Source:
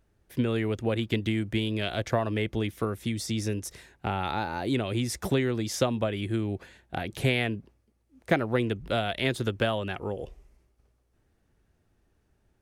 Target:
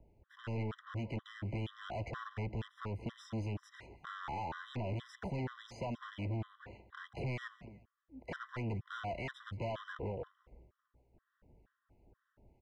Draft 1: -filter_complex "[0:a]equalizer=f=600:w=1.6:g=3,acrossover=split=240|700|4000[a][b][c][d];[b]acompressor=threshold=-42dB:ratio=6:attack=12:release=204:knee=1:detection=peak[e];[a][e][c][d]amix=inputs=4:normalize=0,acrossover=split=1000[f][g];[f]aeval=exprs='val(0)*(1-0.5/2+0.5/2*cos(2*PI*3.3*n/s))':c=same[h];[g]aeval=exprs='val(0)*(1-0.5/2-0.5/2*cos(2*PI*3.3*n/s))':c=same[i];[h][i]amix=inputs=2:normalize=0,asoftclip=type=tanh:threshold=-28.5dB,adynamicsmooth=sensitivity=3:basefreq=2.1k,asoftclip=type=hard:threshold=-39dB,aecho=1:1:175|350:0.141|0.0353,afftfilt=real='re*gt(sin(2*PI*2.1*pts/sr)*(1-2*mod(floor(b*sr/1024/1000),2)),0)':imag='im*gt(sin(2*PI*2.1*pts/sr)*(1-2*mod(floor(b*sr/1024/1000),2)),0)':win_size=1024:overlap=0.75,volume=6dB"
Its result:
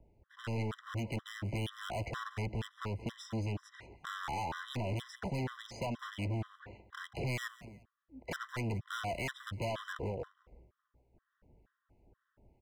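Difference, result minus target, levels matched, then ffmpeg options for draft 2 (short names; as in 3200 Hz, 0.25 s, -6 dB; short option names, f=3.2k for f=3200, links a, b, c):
soft clip: distortion -7 dB
-filter_complex "[0:a]equalizer=f=600:w=1.6:g=3,acrossover=split=240|700|4000[a][b][c][d];[b]acompressor=threshold=-42dB:ratio=6:attack=12:release=204:knee=1:detection=peak[e];[a][e][c][d]amix=inputs=4:normalize=0,acrossover=split=1000[f][g];[f]aeval=exprs='val(0)*(1-0.5/2+0.5/2*cos(2*PI*3.3*n/s))':c=same[h];[g]aeval=exprs='val(0)*(1-0.5/2-0.5/2*cos(2*PI*3.3*n/s))':c=same[i];[h][i]amix=inputs=2:normalize=0,asoftclip=type=tanh:threshold=-40.5dB,adynamicsmooth=sensitivity=3:basefreq=2.1k,asoftclip=type=hard:threshold=-39dB,aecho=1:1:175|350:0.141|0.0353,afftfilt=real='re*gt(sin(2*PI*2.1*pts/sr)*(1-2*mod(floor(b*sr/1024/1000),2)),0)':imag='im*gt(sin(2*PI*2.1*pts/sr)*(1-2*mod(floor(b*sr/1024/1000),2)),0)':win_size=1024:overlap=0.75,volume=6dB"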